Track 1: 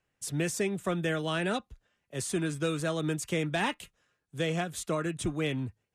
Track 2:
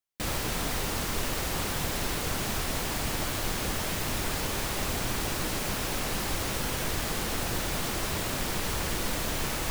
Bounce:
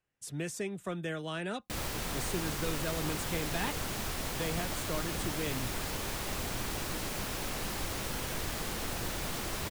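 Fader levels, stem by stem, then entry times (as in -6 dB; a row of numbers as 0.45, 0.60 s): -6.5, -5.5 dB; 0.00, 1.50 s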